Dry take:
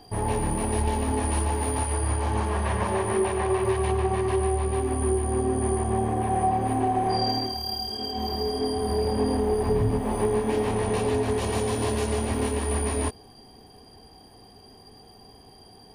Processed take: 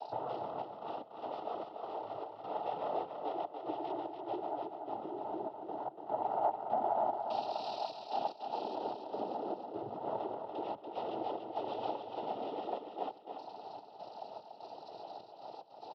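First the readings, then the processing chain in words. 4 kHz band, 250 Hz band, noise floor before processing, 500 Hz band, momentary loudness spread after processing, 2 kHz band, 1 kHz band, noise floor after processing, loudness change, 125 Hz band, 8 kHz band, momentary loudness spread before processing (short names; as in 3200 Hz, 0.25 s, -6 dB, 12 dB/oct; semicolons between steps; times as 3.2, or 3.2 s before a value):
-18.5 dB, -18.0 dB, -51 dBFS, -13.0 dB, 14 LU, -21.5 dB, -8.0 dB, -54 dBFS, -14.0 dB, -32.5 dB, under -40 dB, 3 LU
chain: self-modulated delay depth 0.16 ms; compressor, threshold -37 dBFS, peak gain reduction 16.5 dB; step gate "xxx.x.xx.xx." 74 bpm -24 dB; double band-pass 1600 Hz, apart 2.5 oct; noise vocoder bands 12; air absorption 400 m; feedback echo 0.288 s, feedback 28%, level -6 dB; gain +16.5 dB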